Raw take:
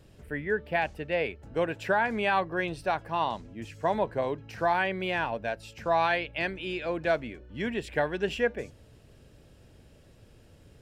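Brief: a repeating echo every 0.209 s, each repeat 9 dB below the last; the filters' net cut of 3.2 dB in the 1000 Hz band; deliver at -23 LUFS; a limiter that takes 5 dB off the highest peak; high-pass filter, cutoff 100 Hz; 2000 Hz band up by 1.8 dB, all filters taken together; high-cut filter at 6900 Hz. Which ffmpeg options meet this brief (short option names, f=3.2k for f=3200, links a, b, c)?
-af "highpass=100,lowpass=6.9k,equalizer=f=1k:t=o:g=-5,equalizer=f=2k:t=o:g=4,alimiter=limit=-18.5dB:level=0:latency=1,aecho=1:1:209|418|627|836:0.355|0.124|0.0435|0.0152,volume=8.5dB"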